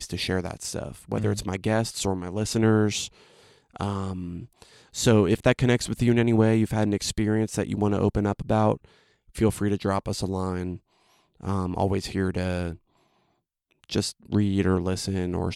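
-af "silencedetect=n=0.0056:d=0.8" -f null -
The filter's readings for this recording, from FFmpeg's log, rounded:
silence_start: 12.76
silence_end: 13.84 | silence_duration: 1.08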